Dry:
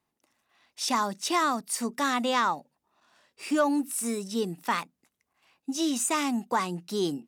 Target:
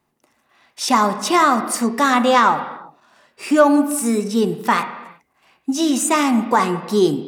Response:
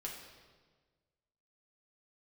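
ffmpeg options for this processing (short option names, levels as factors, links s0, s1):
-filter_complex "[0:a]asplit=2[s0][s1];[1:a]atrim=start_sample=2205,afade=t=out:st=0.44:d=0.01,atrim=end_sample=19845,lowpass=2400[s2];[s1][s2]afir=irnorm=-1:irlink=0,volume=1[s3];[s0][s3]amix=inputs=2:normalize=0,volume=2.37"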